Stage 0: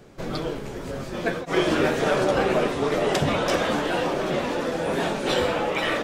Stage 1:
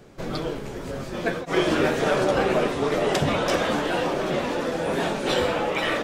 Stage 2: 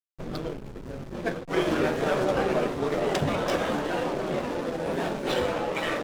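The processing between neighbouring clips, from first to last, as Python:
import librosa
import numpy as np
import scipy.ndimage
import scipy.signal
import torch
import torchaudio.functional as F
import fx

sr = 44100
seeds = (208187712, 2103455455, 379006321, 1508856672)

y1 = x
y2 = fx.backlash(y1, sr, play_db=-27.0)
y2 = y2 * 10.0 ** (-3.0 / 20.0)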